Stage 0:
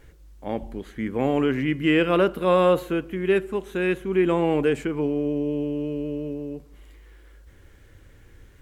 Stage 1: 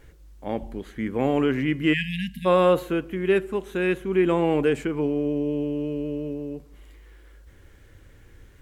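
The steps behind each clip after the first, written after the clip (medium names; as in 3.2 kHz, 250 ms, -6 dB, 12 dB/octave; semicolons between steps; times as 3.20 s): spectral selection erased 1.93–2.46 s, 250–1600 Hz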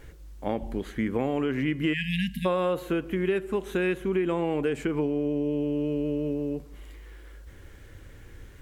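compression 6:1, threshold -27 dBFS, peak gain reduction 12 dB; trim +3.5 dB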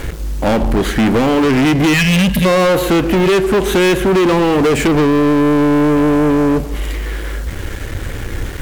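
waveshaping leveller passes 5; trim +6 dB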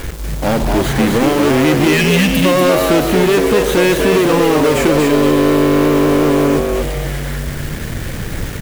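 block-companded coder 3-bit; on a send: frequency-shifting echo 240 ms, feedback 34%, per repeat +93 Hz, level -4 dB; on the sum: trim -1.5 dB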